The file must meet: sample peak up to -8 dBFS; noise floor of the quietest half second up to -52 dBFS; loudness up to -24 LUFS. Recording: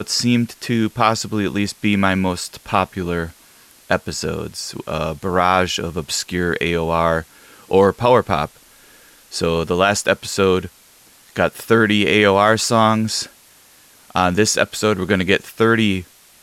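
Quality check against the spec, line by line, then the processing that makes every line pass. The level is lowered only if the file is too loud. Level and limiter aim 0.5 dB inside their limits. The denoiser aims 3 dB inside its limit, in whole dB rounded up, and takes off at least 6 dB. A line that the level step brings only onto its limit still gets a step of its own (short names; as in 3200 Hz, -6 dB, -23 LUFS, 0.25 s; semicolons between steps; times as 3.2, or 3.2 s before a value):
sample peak -2.0 dBFS: fail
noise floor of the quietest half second -49 dBFS: fail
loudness -18.0 LUFS: fail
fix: gain -6.5 dB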